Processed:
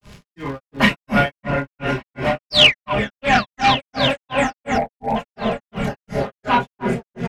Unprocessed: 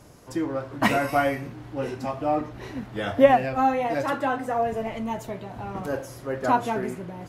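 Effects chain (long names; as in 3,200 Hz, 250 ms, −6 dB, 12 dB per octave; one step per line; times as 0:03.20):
sound drawn into the spectrogram fall, 0:02.39–0:02.89, 910–8,800 Hz −21 dBFS
comb filter 4.9 ms, depth 54%
on a send: echo whose low-pass opens from repeat to repeat 283 ms, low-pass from 750 Hz, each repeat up 1 octave, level 0 dB
on the sum: multi-voice chorus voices 6, 0.33 Hz, delay 29 ms, depth 1.1 ms
gain on a spectral selection 0:04.79–0:05.17, 1,000–7,700 Hz −29 dB
surface crackle 140 per second −41 dBFS
in parallel at −9 dB: sine wavefolder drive 8 dB, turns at −9 dBFS
on the sum: low-shelf EQ 290 Hz +9.5 dB
granular cloud 249 ms, grains 2.8 per second, spray 26 ms, pitch spread up and down by 0 semitones
parametric band 2,700 Hz +13 dB 2.1 octaves
level −4 dB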